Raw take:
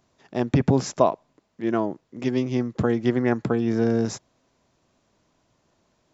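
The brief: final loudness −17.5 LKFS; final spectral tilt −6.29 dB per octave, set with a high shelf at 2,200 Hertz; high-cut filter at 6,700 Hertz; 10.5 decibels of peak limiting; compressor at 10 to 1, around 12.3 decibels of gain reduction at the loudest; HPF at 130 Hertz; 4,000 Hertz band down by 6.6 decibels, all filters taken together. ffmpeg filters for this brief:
ffmpeg -i in.wav -af "highpass=130,lowpass=6700,highshelf=frequency=2200:gain=-5,equalizer=frequency=4000:width_type=o:gain=-3,acompressor=threshold=-27dB:ratio=10,volume=19dB,alimiter=limit=-6dB:level=0:latency=1" out.wav

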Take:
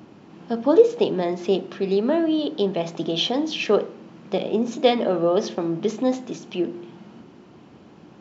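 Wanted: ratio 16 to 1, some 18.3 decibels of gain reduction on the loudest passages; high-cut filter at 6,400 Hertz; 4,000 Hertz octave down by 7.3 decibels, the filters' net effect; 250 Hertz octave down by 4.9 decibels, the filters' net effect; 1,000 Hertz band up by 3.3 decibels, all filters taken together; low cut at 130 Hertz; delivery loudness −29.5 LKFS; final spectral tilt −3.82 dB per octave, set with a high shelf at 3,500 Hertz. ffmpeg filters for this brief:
ffmpeg -i in.wav -af "highpass=130,lowpass=6400,equalizer=frequency=250:width_type=o:gain=-7,equalizer=frequency=1000:width_type=o:gain=6.5,highshelf=frequency=3500:gain=-8,equalizer=frequency=4000:width_type=o:gain=-5,acompressor=threshold=-27dB:ratio=16,volume=3.5dB" out.wav

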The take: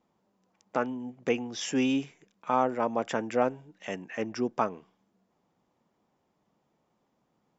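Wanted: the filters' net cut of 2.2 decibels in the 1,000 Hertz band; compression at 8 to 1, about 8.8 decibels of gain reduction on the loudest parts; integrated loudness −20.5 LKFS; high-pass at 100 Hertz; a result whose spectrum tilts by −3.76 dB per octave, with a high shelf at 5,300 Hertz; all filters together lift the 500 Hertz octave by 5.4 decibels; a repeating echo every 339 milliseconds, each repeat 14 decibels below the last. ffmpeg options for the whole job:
ffmpeg -i in.wav -af "highpass=100,equalizer=frequency=500:width_type=o:gain=8,equalizer=frequency=1000:width_type=o:gain=-6.5,highshelf=frequency=5300:gain=7,acompressor=threshold=-25dB:ratio=8,aecho=1:1:339|678:0.2|0.0399,volume=12dB" out.wav

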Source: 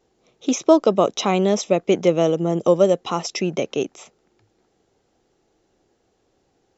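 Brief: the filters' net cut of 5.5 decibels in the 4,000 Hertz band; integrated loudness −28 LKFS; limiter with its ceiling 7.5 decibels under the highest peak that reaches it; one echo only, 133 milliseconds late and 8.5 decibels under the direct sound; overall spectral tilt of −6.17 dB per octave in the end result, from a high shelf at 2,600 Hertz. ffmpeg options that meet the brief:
ffmpeg -i in.wav -af "highshelf=frequency=2600:gain=-4.5,equalizer=frequency=4000:width_type=o:gain=-3.5,alimiter=limit=-10dB:level=0:latency=1,aecho=1:1:133:0.376,volume=-6dB" out.wav

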